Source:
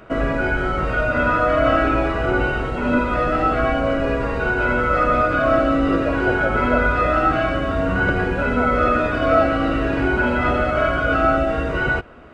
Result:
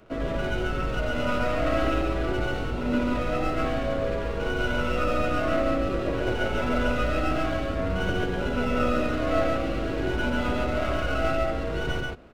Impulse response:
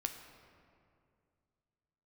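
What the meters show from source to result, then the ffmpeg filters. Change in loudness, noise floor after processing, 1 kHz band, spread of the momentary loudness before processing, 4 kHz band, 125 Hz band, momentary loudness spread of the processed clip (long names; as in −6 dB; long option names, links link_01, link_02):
−8.0 dB, −29 dBFS, −10.5 dB, 4 LU, −1.5 dB, −5.5 dB, 4 LU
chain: -filter_complex "[0:a]acrossover=split=230|680[link_01][link_02][link_03];[link_03]aeval=exprs='max(val(0),0)':channel_layout=same[link_04];[link_01][link_02][link_04]amix=inputs=3:normalize=0,aecho=1:1:90.38|139.9:0.282|0.794,volume=-8dB"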